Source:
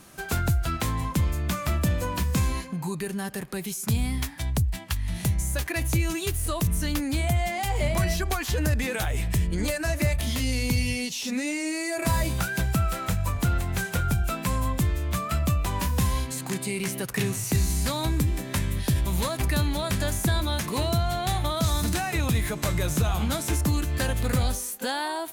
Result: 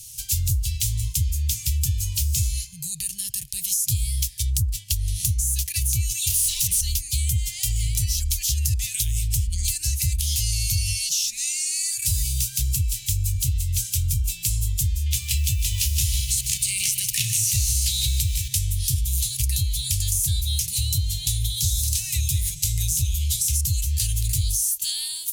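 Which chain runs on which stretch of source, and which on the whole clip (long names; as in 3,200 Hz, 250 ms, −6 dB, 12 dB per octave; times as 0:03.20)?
0:06.30–0:06.81: parametric band 62 Hz −11.5 dB 1.3 octaves + mid-hump overdrive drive 28 dB, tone 4,200 Hz, clips at −16 dBFS
0:15.06–0:18.48: parametric band 2,400 Hz +9 dB 2 octaves + feedback echo at a low word length 154 ms, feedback 55%, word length 7 bits, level −9 dB
whole clip: elliptic band-stop filter 110–3,000 Hz, stop band 40 dB; high shelf with overshoot 4,500 Hz +6.5 dB, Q 1.5; downward compressor 3 to 1, threshold −28 dBFS; level +7.5 dB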